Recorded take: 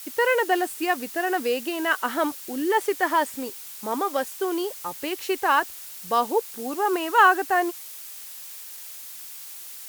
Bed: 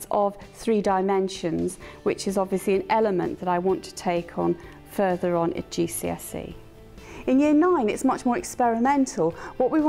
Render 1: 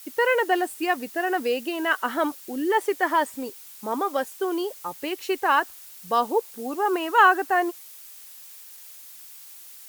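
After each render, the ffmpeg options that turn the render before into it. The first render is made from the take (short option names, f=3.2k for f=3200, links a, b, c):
-af "afftdn=nr=6:nf=-40"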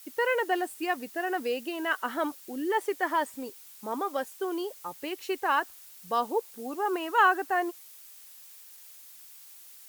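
-af "volume=-5.5dB"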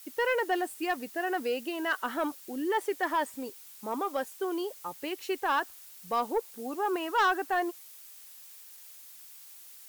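-af "asoftclip=type=tanh:threshold=-19dB"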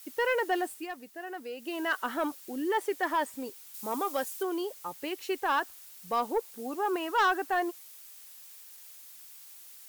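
-filter_complex "[0:a]asettb=1/sr,asplit=3[a][b][c];[a]atrim=end=3.744[d];[b]atrim=start=3.74:end=4.43,asetpts=PTS-STARTPTS,afade=t=in:d=0.004:c=qsin,afade=t=out:st=0.686:d=0.004:c=qsin,equalizer=f=16k:t=o:w=2:g=8[e];[c]atrim=start=4.426[f];[d][e]acrossfade=d=0.004:c1=hsin:c2=qsin[g];[g][f]acrossfade=d=0.004:c1=qsin:c2=hsin,asplit=3[h][i][j];[h]atrim=end=0.88,asetpts=PTS-STARTPTS,afade=t=out:st=0.71:d=0.17:silence=0.354813[k];[i]atrim=start=0.88:end=1.57,asetpts=PTS-STARTPTS,volume=-9dB[l];[j]atrim=start=1.57,asetpts=PTS-STARTPTS,afade=t=in:d=0.17:silence=0.354813[m];[k][l][m]concat=n=3:v=0:a=1"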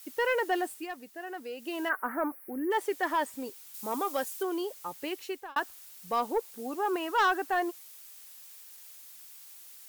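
-filter_complex "[0:a]asplit=3[a][b][c];[a]afade=t=out:st=1.88:d=0.02[d];[b]asuperstop=centerf=5000:order=12:qfactor=0.63,afade=t=in:st=1.88:d=0.02,afade=t=out:st=2.7:d=0.02[e];[c]afade=t=in:st=2.7:d=0.02[f];[d][e][f]amix=inputs=3:normalize=0,asplit=2[g][h];[g]atrim=end=5.56,asetpts=PTS-STARTPTS,afade=t=out:st=5.15:d=0.41[i];[h]atrim=start=5.56,asetpts=PTS-STARTPTS,afade=t=in:d=0.004:c=hsin[j];[i][j]concat=n=2:v=0:a=1"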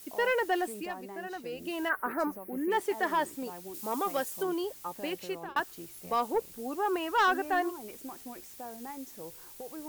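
-filter_complex "[1:a]volume=-22dB[a];[0:a][a]amix=inputs=2:normalize=0"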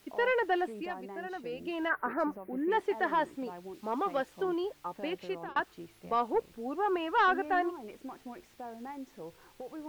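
-filter_complex "[0:a]acrossover=split=4400[a][b];[b]acompressor=threshold=-56dB:ratio=4:attack=1:release=60[c];[a][c]amix=inputs=2:normalize=0,highshelf=f=6.1k:g=-10.5"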